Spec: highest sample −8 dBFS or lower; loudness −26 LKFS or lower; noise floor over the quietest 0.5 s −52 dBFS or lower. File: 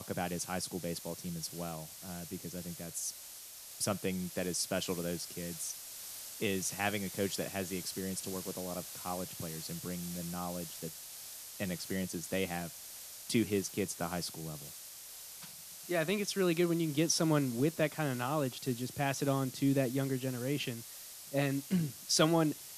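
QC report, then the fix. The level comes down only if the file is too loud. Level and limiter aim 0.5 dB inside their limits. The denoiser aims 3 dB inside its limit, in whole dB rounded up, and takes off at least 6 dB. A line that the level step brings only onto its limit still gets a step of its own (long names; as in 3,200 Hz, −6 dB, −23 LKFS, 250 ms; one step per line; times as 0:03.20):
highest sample −13.5 dBFS: in spec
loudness −35.5 LKFS: in spec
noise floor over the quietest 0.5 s −50 dBFS: out of spec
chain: broadband denoise 6 dB, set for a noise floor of −50 dBFS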